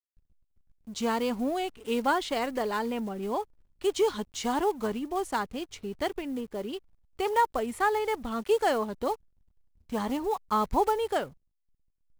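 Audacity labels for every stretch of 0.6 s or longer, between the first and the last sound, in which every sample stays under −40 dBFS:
9.150000	9.900000	silence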